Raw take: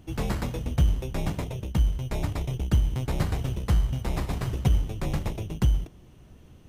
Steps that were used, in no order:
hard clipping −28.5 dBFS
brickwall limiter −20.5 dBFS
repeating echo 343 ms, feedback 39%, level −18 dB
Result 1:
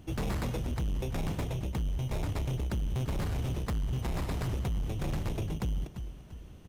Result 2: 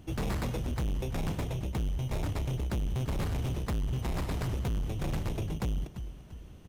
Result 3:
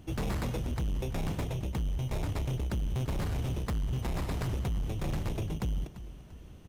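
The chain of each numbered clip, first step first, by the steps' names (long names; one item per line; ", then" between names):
repeating echo, then brickwall limiter, then hard clipping
repeating echo, then hard clipping, then brickwall limiter
brickwall limiter, then repeating echo, then hard clipping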